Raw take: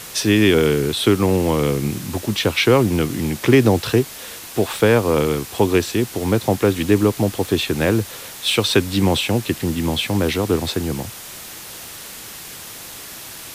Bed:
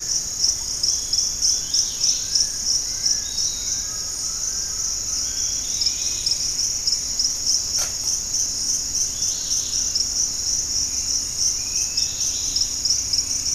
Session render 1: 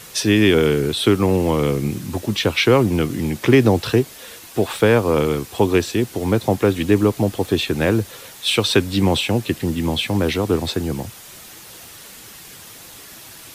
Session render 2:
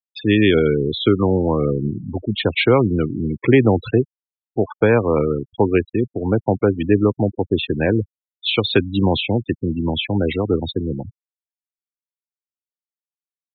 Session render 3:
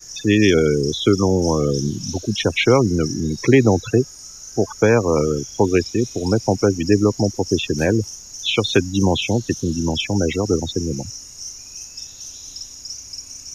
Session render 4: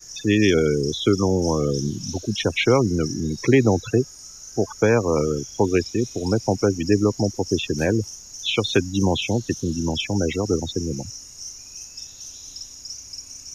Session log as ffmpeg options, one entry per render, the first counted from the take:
-af "afftdn=nr=6:nf=-36"
-af "lowpass=f=4.1k:w=0.5412,lowpass=f=4.1k:w=1.3066,afftfilt=real='re*gte(hypot(re,im),0.126)':imag='im*gte(hypot(re,im),0.126)':win_size=1024:overlap=0.75"
-filter_complex "[1:a]volume=-12.5dB[a];[0:a][a]amix=inputs=2:normalize=0"
-af "volume=-3dB"

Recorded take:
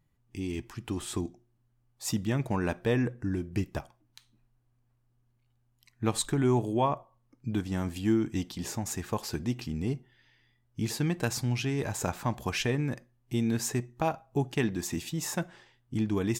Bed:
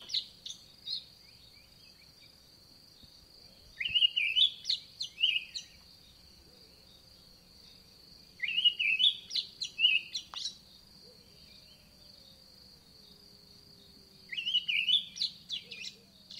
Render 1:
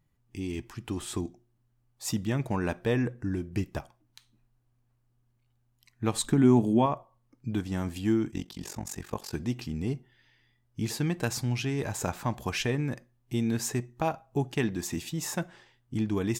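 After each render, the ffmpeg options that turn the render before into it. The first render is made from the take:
-filter_complex "[0:a]asettb=1/sr,asplit=3[a][b][c];[a]atrim=end=6.244[d];[b]atrim=start=6.24:end=6.86,asetpts=PTS-STARTPTS,afade=t=in:d=0.004:c=qsin,afade=t=out:st=0.616:d=0.004:c=qsin,equalizer=f=220:t=o:w=0.77:g=11[e];[c]atrim=start=6.856[f];[d][e]acrossfade=d=0.004:c1=hsin:c2=qsin[g];[g][f]acrossfade=d=0.004:c1=qsin:c2=hsin,asettb=1/sr,asplit=3[h][i][j];[h]atrim=end=8.314[k];[i]atrim=start=8.31:end=9.34,asetpts=PTS-STARTPTS,afade=t=in:d=0.004:c=qsin,afade=t=out:st=1.026:d=0.004:c=qsin,tremolo=f=46:d=0.889[l];[j]atrim=start=9.336[m];[k][l]acrossfade=d=0.004:c1=hsin:c2=qsin[n];[n][m]acrossfade=d=0.004:c1=qsin:c2=hsin"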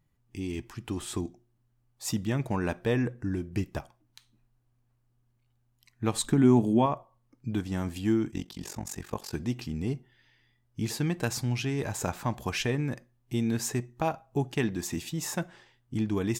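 -af anull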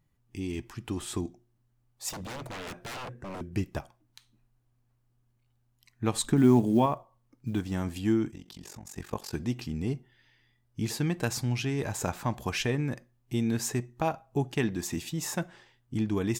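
-filter_complex "[0:a]asettb=1/sr,asplit=3[a][b][c];[a]atrim=end=2.094[d];[b]atrim=start=2.09:end=3.41,asetpts=PTS-STARTPTS,afade=t=in:d=0.004:c=qsin,afade=t=out:st=1.316:d=0.004:c=qsin,aeval=exprs='0.02*(abs(mod(val(0)/0.02+3,4)-2)-1)':c=same[e];[c]atrim=start=3.406[f];[d][e]acrossfade=d=0.004:c1=hsin:c2=qsin[g];[g][f]acrossfade=d=0.004:c1=qsin:c2=hsin,asettb=1/sr,asplit=3[h][i][j];[h]atrim=end=6.364[k];[i]atrim=start=6.36:end=7.76,asetpts=PTS-STARTPTS,afade=t=in:d=0.004:c=qsin,afade=t=out:st=1.396:d=0.004:c=qsin,acrusher=bits=9:mode=log:mix=0:aa=0.000001[l];[j]atrim=start=7.756[m];[k][l]acrossfade=d=0.004:c1=hsin:c2=qsin[n];[n][m]acrossfade=d=0.004:c1=qsin:c2=hsin,asettb=1/sr,asplit=3[o][p][q];[o]atrim=end=8.304[r];[p]atrim=start=8.3:end=8.97,asetpts=PTS-STARTPTS,afade=t=in:d=0.004:c=qsin,afade=t=out:st=0.666:d=0.004:c=qsin,acompressor=threshold=-42dB:ratio=4:attack=3.2:release=140:knee=1:detection=peak[s];[q]atrim=start=8.966[t];[r][s]acrossfade=d=0.004:c1=hsin:c2=qsin[u];[u][t]acrossfade=d=0.004:c1=qsin:c2=hsin"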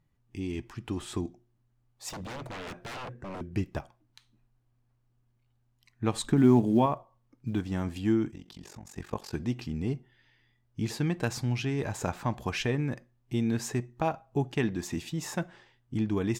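-af "highshelf=f=7k:g=-10"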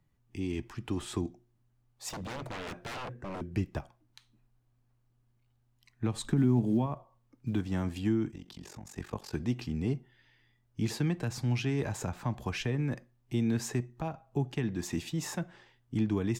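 -filter_complex "[0:a]acrossover=split=190[a][b];[b]alimiter=limit=-23.5dB:level=0:latency=1:release=276[c];[a][c]amix=inputs=2:normalize=0,acrossover=split=340[d][e];[e]acompressor=threshold=-33dB:ratio=6[f];[d][f]amix=inputs=2:normalize=0"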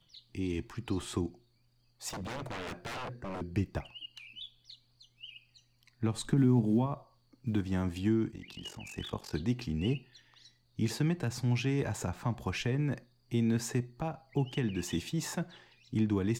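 -filter_complex "[1:a]volume=-20.5dB[a];[0:a][a]amix=inputs=2:normalize=0"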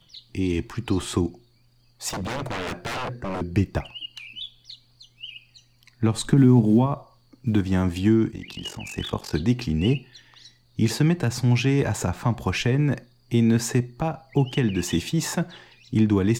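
-af "volume=10dB"

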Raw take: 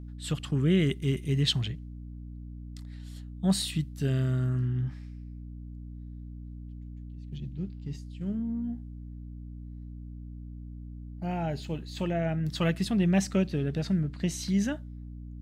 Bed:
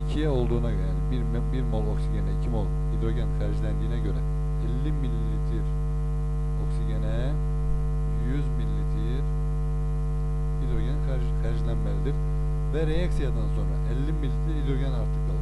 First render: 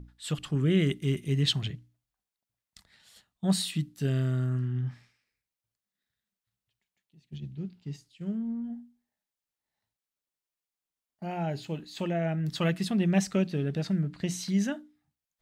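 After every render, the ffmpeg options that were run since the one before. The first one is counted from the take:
-af "bandreject=f=60:t=h:w=6,bandreject=f=120:t=h:w=6,bandreject=f=180:t=h:w=6,bandreject=f=240:t=h:w=6,bandreject=f=300:t=h:w=6"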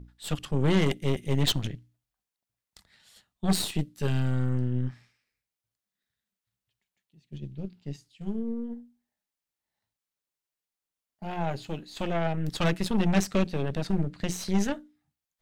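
-af "aeval=exprs='0.224*(cos(1*acos(clip(val(0)/0.224,-1,1)))-cos(1*PI/2))+0.0355*(cos(8*acos(clip(val(0)/0.224,-1,1)))-cos(8*PI/2))':c=same"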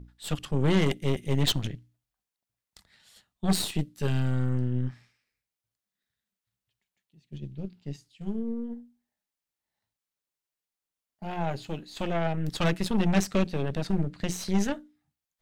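-af anull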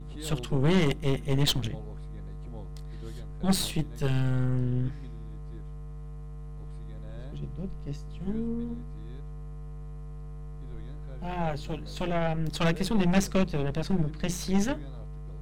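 -filter_complex "[1:a]volume=-14dB[a];[0:a][a]amix=inputs=2:normalize=0"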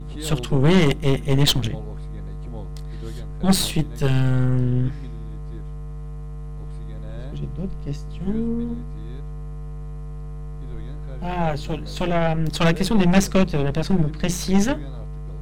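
-af "volume=7.5dB"

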